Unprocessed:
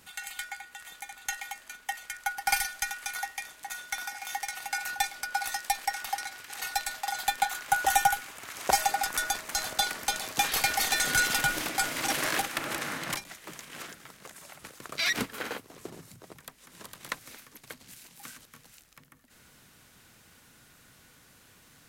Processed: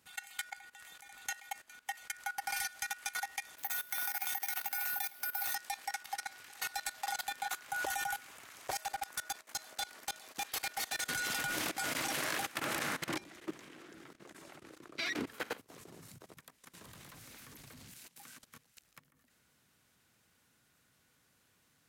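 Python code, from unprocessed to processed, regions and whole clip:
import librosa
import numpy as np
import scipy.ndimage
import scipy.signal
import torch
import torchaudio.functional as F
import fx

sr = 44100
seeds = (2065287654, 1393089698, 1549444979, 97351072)

y = fx.chain(x, sr, fx.resample_bad(factor=3, down='filtered', up='zero_stuff'),
    fx.band_squash(depth_pct=40), at=(3.58, 5.55))
y = fx.chain(y, sr, fx.highpass(hz=250.0, slope=12),
    fx.level_steps(step_db=14),
    fx.tube_stage(drive_db=27.0, bias=0.35), at=(8.67, 11.09))
y = fx.chain(y, sr, fx.lowpass(hz=3800.0, slope=6),
    fx.peak_eq(hz=330.0, db=13.5, octaves=0.68), at=(13.09, 15.27))
y = fx.chain(y, sr, fx.law_mismatch(coded='mu'),
    fx.low_shelf(hz=160.0, db=10.0),
    fx.clip_hard(threshold_db=-33.0), at=(16.81, 17.94))
y = scipy.signal.sosfilt(scipy.signal.butter(2, 55.0, 'highpass', fs=sr, output='sos'), y)
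y = fx.level_steps(y, sr, step_db=18)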